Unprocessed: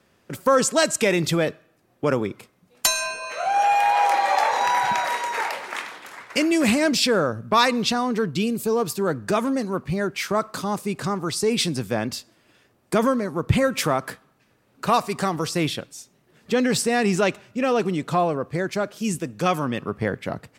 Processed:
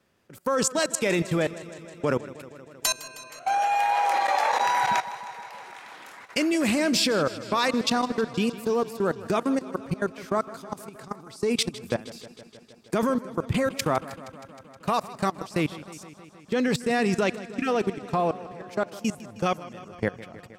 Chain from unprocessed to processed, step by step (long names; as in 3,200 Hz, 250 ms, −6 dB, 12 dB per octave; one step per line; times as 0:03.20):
output level in coarse steps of 23 dB
time-frequency box erased 0:17.44–0:17.68, 350–1,100 Hz
feedback echo with a swinging delay time 157 ms, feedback 75%, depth 65 cents, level −17 dB